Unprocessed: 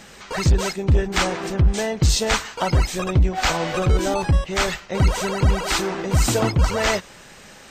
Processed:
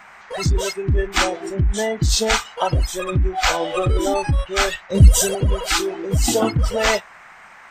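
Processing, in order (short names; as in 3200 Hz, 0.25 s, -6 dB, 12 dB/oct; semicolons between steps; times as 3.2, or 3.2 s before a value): band noise 680–2200 Hz -32 dBFS; spectral noise reduction 15 dB; 4.9–5.35 tone controls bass +13 dB, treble +14 dB; in parallel at -2 dB: negative-ratio compressor -18 dBFS, ratio -0.5; on the sum: gain -4 dB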